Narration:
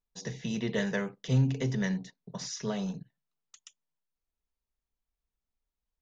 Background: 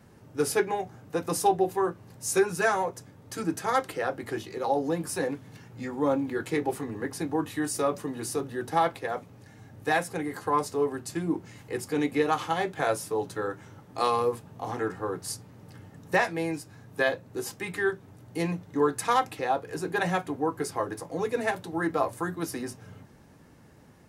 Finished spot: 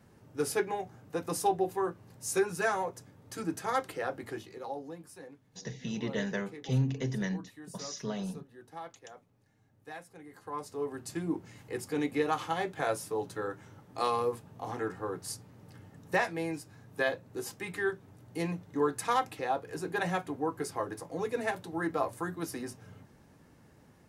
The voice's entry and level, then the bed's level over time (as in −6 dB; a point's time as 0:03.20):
5.40 s, −3.0 dB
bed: 0:04.22 −5 dB
0:05.17 −19.5 dB
0:10.16 −19.5 dB
0:11.07 −4.5 dB